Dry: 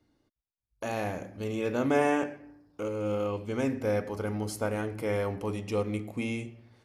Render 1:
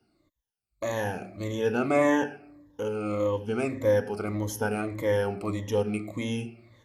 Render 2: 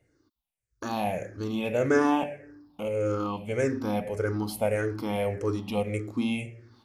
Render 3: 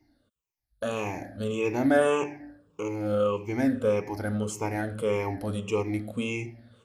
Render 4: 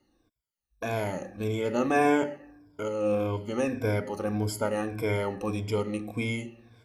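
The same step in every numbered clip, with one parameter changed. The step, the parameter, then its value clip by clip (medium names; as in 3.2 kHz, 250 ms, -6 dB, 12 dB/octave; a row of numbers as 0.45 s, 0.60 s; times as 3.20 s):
drifting ripple filter, ripples per octave: 1.1, 0.5, 0.74, 1.7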